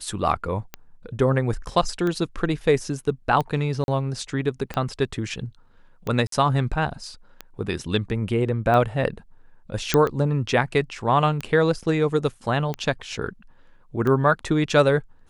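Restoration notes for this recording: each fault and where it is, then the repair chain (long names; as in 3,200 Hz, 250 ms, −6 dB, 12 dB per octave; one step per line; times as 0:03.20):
scratch tick 45 rpm −15 dBFS
0:03.84–0:03.88: drop-out 41 ms
0:06.27–0:06.32: drop-out 53 ms
0:09.94: click −4 dBFS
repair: click removal
repair the gap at 0:03.84, 41 ms
repair the gap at 0:06.27, 53 ms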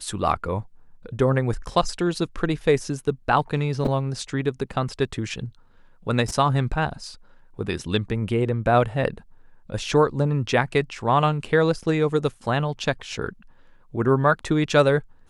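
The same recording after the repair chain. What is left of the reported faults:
none of them is left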